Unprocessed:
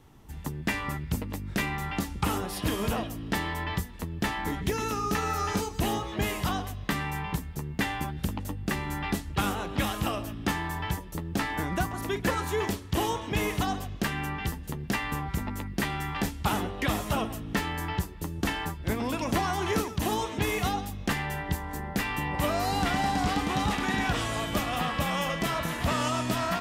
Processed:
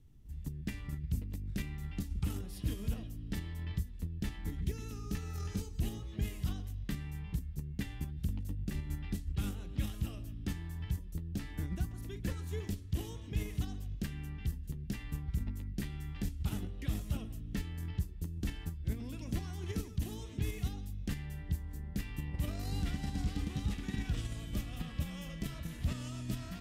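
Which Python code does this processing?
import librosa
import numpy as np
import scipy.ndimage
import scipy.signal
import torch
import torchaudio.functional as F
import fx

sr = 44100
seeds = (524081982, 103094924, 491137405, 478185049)

p1 = fx.tone_stack(x, sr, knobs='10-0-1')
p2 = fx.level_steps(p1, sr, step_db=15)
p3 = p1 + (p2 * librosa.db_to_amplitude(-0.5))
y = p3 * librosa.db_to_amplitude(4.0)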